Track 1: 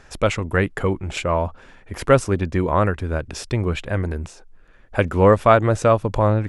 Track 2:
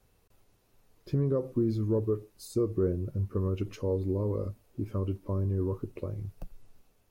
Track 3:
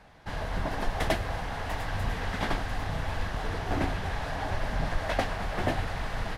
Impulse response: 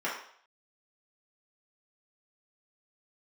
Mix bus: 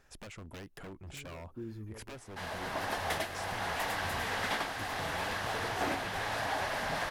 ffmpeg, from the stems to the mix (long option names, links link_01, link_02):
-filter_complex "[0:a]acompressor=threshold=-21dB:ratio=10,aeval=exprs='0.0708*(abs(mod(val(0)/0.0708+3,4)-2)-1)':channel_layout=same,volume=-17dB,asplit=2[link_01][link_02];[1:a]volume=-13.5dB[link_03];[2:a]highpass=frequency=610:poles=1,alimiter=limit=-23dB:level=0:latency=1:release=437,dynaudnorm=framelen=120:gausssize=13:maxgain=4.5dB,adelay=2100,volume=-1.5dB[link_04];[link_02]apad=whole_len=313462[link_05];[link_03][link_05]sidechaincompress=threshold=-56dB:ratio=8:attack=5.5:release=149[link_06];[link_01][link_06][link_04]amix=inputs=3:normalize=0,highshelf=frequency=9200:gain=7.5,asoftclip=type=tanh:threshold=-21dB"